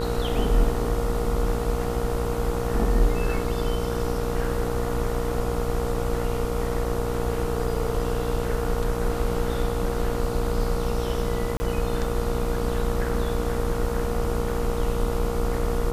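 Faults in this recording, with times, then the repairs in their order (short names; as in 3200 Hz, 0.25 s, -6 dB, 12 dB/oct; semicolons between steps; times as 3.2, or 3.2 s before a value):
buzz 60 Hz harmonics 24 -29 dBFS
tone 470 Hz -29 dBFS
11.57–11.6 gap 30 ms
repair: notch 470 Hz, Q 30; de-hum 60 Hz, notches 24; interpolate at 11.57, 30 ms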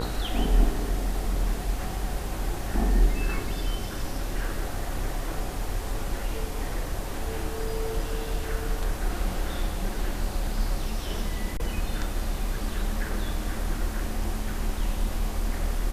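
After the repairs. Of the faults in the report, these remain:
none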